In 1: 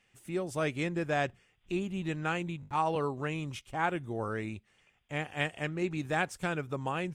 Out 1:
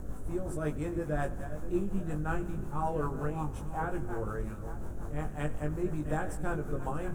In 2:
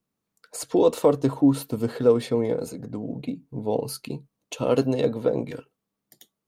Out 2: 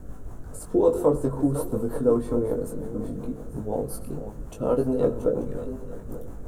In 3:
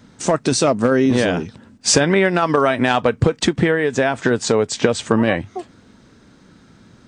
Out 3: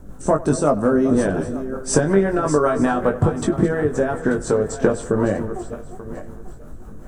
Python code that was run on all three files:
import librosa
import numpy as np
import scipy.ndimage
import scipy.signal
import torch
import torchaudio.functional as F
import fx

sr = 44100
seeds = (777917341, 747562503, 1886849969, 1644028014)

y = fx.reverse_delay_fb(x, sr, ms=443, feedback_pct=44, wet_db=-11.0)
y = fx.notch(y, sr, hz=6700.0, q=5.6)
y = fx.dmg_noise_colour(y, sr, seeds[0], colour='brown', level_db=-34.0)
y = fx.rotary(y, sr, hz=5.5)
y = fx.band_shelf(y, sr, hz=3200.0, db=-15.0, octaves=1.7)
y = fx.doubler(y, sr, ms=20.0, db=-4.5)
y = fx.echo_wet_lowpass(y, sr, ms=96, feedback_pct=68, hz=3300.0, wet_db=-19)
y = F.gain(torch.from_numpy(y), -1.0).numpy()